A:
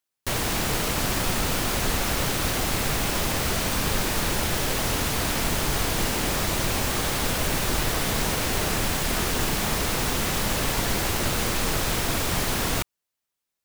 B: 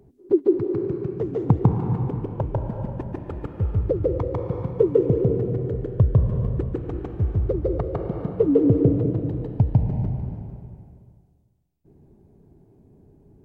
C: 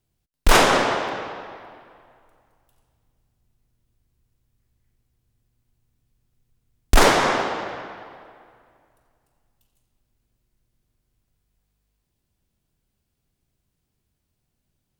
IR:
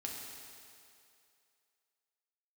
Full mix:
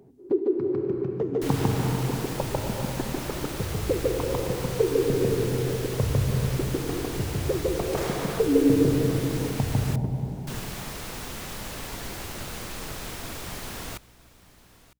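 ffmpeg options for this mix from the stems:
-filter_complex "[0:a]aeval=exprs='val(0)+0.00447*(sin(2*PI*60*n/s)+sin(2*PI*2*60*n/s)/2+sin(2*PI*3*60*n/s)/3+sin(2*PI*4*60*n/s)/4+sin(2*PI*5*60*n/s)/5)':channel_layout=same,adelay=1150,volume=-11dB,asplit=3[link_01][link_02][link_03];[link_01]atrim=end=9.96,asetpts=PTS-STARTPTS,afade=type=out:start_time=9.956:duration=0.004:curve=hsin[link_04];[link_02]atrim=start=9.96:end=10.47,asetpts=PTS-STARTPTS,volume=0[link_05];[link_03]atrim=start=10.47,asetpts=PTS-STARTPTS,afade=type=in:duration=0.004:curve=hsin[link_06];[link_04][link_05][link_06]concat=n=3:v=0:a=1,asplit=2[link_07][link_08];[link_08]volume=-19.5dB[link_09];[1:a]volume=1dB,asplit=2[link_10][link_11];[link_11]volume=-8dB[link_12];[2:a]asoftclip=type=tanh:threshold=-13.5dB,adelay=1000,volume=-12dB[link_13];[link_10][link_13]amix=inputs=2:normalize=0,highpass=140,acompressor=threshold=-27dB:ratio=4,volume=0dB[link_14];[3:a]atrim=start_sample=2205[link_15];[link_12][link_15]afir=irnorm=-1:irlink=0[link_16];[link_09]aecho=0:1:956:1[link_17];[link_07][link_14][link_16][link_17]amix=inputs=4:normalize=0"

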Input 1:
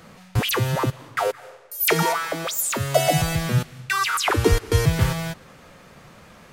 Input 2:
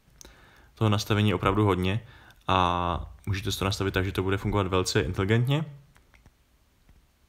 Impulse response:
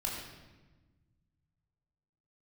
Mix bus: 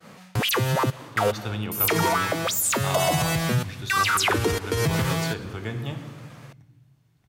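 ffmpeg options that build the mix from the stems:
-filter_complex "[0:a]agate=range=-33dB:threshold=-44dB:ratio=3:detection=peak,alimiter=limit=-15dB:level=0:latency=1:release=70,volume=2dB[link_01];[1:a]adelay=350,volume=-10dB,asplit=2[link_02][link_03];[link_03]volume=-5.5dB[link_04];[2:a]atrim=start_sample=2205[link_05];[link_04][link_05]afir=irnorm=-1:irlink=0[link_06];[link_01][link_02][link_06]amix=inputs=3:normalize=0,highpass=110"

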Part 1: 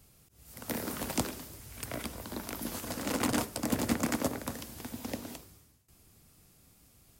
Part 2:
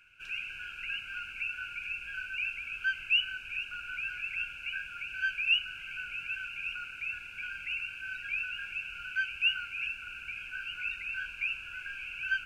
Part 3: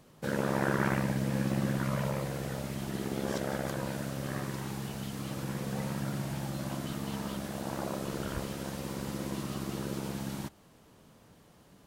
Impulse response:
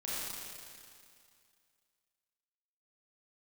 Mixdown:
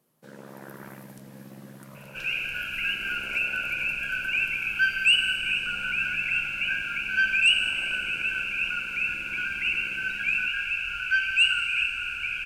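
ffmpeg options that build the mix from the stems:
-filter_complex "[0:a]equalizer=frequency=12000:width_type=o:width=0.7:gain=14.5,acompressor=threshold=-31dB:ratio=6,aeval=exprs='val(0)*sin(2*PI*390*n/s)':channel_layout=same,volume=-18.5dB[link_01];[1:a]aeval=exprs='0.168*sin(PI/2*1.41*val(0)/0.168)':channel_layout=same,adelay=1950,volume=-1dB,asplit=2[link_02][link_03];[link_03]volume=-5dB[link_04];[2:a]highpass=frequency=130:width=0.5412,highpass=frequency=130:width=1.3066,volume=-14dB[link_05];[3:a]atrim=start_sample=2205[link_06];[link_04][link_06]afir=irnorm=-1:irlink=0[link_07];[link_01][link_02][link_05][link_07]amix=inputs=4:normalize=0"

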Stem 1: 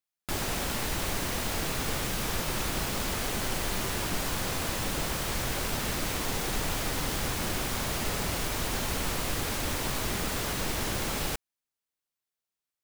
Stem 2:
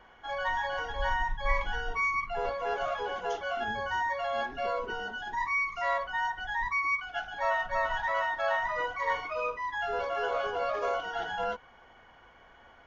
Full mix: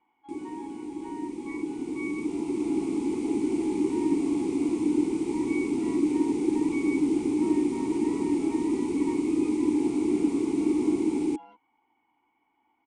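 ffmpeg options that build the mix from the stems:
ffmpeg -i stem1.wav -i stem2.wav -filter_complex "[0:a]firequalizer=gain_entry='entry(130,0);entry(380,13);entry(650,-9);entry(2700,-10);entry(9100,14);entry(13000,-21)':delay=0.05:min_phase=1,dynaudnorm=framelen=900:gausssize=5:maxgain=14dB,volume=1dB[link_01];[1:a]volume=-2dB[link_02];[link_01][link_02]amix=inputs=2:normalize=0,asplit=3[link_03][link_04][link_05];[link_03]bandpass=frequency=300:width_type=q:width=8,volume=0dB[link_06];[link_04]bandpass=frequency=870:width_type=q:width=8,volume=-6dB[link_07];[link_05]bandpass=frequency=2240:width_type=q:width=8,volume=-9dB[link_08];[link_06][link_07][link_08]amix=inputs=3:normalize=0" out.wav

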